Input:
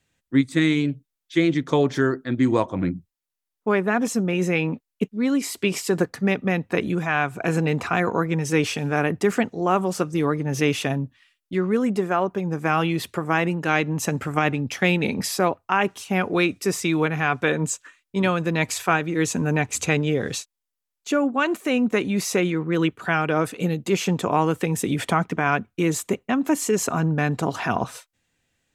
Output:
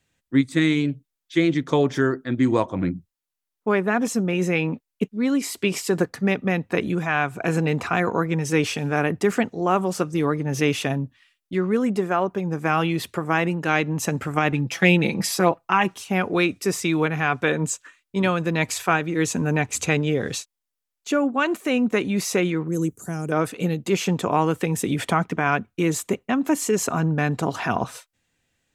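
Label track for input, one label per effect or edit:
1.820000	2.440000	band-stop 4.2 kHz
14.520000	15.940000	comb 6 ms
22.680000	23.320000	FFT filter 160 Hz 0 dB, 440 Hz -4 dB, 940 Hz -15 dB, 3.4 kHz -22 dB, 6.6 kHz +14 dB

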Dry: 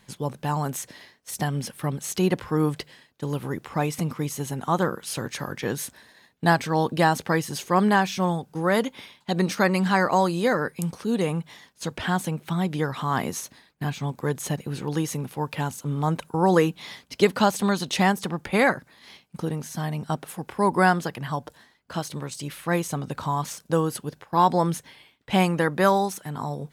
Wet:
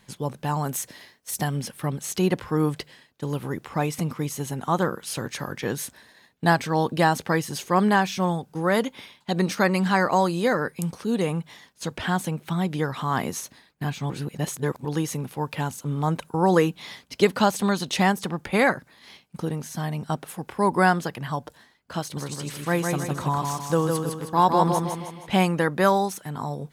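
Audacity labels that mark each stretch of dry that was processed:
0.670000	1.570000	treble shelf 8.7 kHz +7 dB
14.100000	14.850000	reverse
22.010000	25.320000	feedback delay 157 ms, feedback 45%, level -4 dB

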